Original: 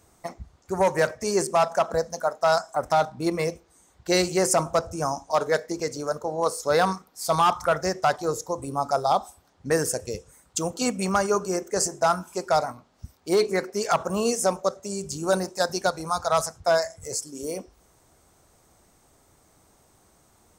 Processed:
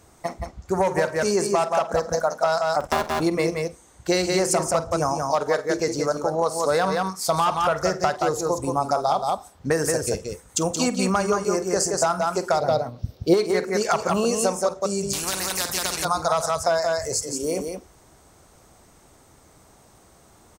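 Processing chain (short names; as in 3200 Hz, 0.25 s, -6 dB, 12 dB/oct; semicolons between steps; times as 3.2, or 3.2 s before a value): 2.8–3.2 cycle switcher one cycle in 2, muted; high shelf 9200 Hz -5 dB; tapped delay 48/175 ms -16.5/-6 dB; compressor, threshold -24 dBFS, peak gain reduction 9 dB; 12.6–13.34 graphic EQ 125/500/1000/2000/4000/8000 Hz +9/+10/-7/-4/+8/-12 dB; 15.13–16.05 spectral compressor 4:1; gain +6 dB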